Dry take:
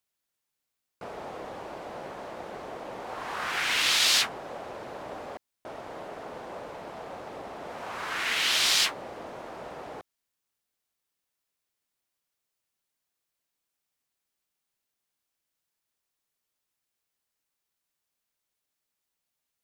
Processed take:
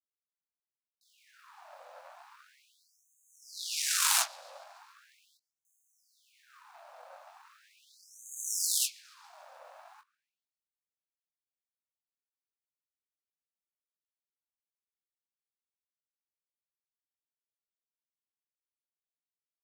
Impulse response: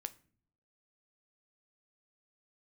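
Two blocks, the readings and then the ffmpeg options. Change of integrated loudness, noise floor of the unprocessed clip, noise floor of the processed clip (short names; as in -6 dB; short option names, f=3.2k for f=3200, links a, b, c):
-4.5 dB, -84 dBFS, under -85 dBFS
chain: -filter_complex "[0:a]acrusher=bits=9:mix=0:aa=0.000001,asplit=2[a][b];[b]adelay=22,volume=-5.5dB[c];[a][c]amix=inputs=2:normalize=0,asplit=2[d][e];[e]asplit=5[f][g][h][i][j];[f]adelay=141,afreqshift=100,volume=-22dB[k];[g]adelay=282,afreqshift=200,volume=-26.3dB[l];[h]adelay=423,afreqshift=300,volume=-30.6dB[m];[i]adelay=564,afreqshift=400,volume=-34.9dB[n];[j]adelay=705,afreqshift=500,volume=-39.2dB[o];[k][l][m][n][o]amix=inputs=5:normalize=0[p];[d][p]amix=inputs=2:normalize=0,aeval=exprs='0.398*(cos(1*acos(clip(val(0)/0.398,-1,1)))-cos(1*PI/2))+0.141*(cos(3*acos(clip(val(0)/0.398,-1,1)))-cos(3*PI/2))+0.126*(cos(4*acos(clip(val(0)/0.398,-1,1)))-cos(4*PI/2))+0.0126*(cos(5*acos(clip(val(0)/0.398,-1,1)))-cos(5*PI/2))+0.02*(cos(7*acos(clip(val(0)/0.398,-1,1)))-cos(7*PI/2))':c=same,equalizer=f=2k:t=o:w=0.33:g=-6,equalizer=f=3.15k:t=o:w=0.33:g=-4,equalizer=f=16k:t=o:w=0.33:g=-4,afftfilt=real='re*gte(b*sr/1024,490*pow(6300/490,0.5+0.5*sin(2*PI*0.39*pts/sr)))':imag='im*gte(b*sr/1024,490*pow(6300/490,0.5+0.5*sin(2*PI*0.39*pts/sr)))':win_size=1024:overlap=0.75"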